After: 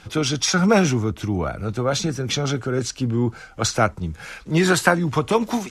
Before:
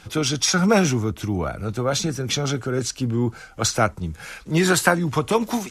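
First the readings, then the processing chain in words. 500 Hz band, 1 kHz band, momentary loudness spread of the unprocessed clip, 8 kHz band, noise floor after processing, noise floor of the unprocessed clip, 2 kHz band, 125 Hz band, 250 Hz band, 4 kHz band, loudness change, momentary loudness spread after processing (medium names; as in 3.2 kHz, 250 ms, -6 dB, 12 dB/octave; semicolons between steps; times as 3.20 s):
+1.0 dB, +1.0 dB, 9 LU, -2.0 dB, -45 dBFS, -45 dBFS, +1.0 dB, +1.0 dB, +1.0 dB, -0.5 dB, +0.5 dB, 8 LU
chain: treble shelf 9.8 kHz -10.5 dB; trim +1 dB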